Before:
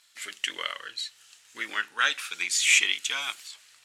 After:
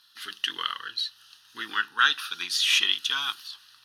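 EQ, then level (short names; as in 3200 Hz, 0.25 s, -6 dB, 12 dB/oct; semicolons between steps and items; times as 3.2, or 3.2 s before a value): fixed phaser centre 2200 Hz, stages 6; +5.0 dB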